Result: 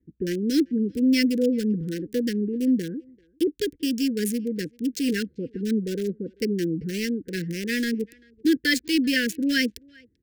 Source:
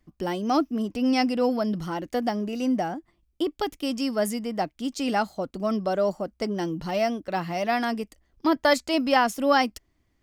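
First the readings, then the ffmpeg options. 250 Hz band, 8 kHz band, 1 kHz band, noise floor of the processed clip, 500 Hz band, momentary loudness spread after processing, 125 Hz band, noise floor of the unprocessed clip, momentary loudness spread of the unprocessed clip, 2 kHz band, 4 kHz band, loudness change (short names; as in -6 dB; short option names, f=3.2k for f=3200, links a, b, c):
+3.5 dB, +4.0 dB, under -30 dB, -64 dBFS, -3.0 dB, 8 LU, +3.5 dB, -70 dBFS, 9 LU, +1.5 dB, +2.5 dB, +1.0 dB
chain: -filter_complex "[0:a]highpass=72,acrossover=split=1100[a][b];[b]aeval=exprs='val(0)*gte(abs(val(0)),0.0237)':c=same[c];[a][c]amix=inputs=2:normalize=0,asuperstop=centerf=880:order=20:qfactor=0.83,asplit=2[d][e];[e]adelay=390,highpass=300,lowpass=3.4k,asoftclip=type=hard:threshold=-20.5dB,volume=-26dB[f];[d][f]amix=inputs=2:normalize=0,volume=3.5dB"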